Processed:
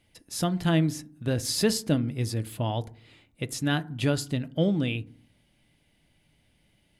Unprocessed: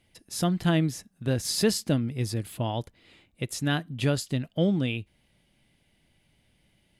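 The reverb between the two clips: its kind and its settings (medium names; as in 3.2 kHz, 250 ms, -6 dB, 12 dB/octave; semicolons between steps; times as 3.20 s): FDN reverb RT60 0.51 s, low-frequency decay 1.5×, high-frequency decay 0.3×, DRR 14.5 dB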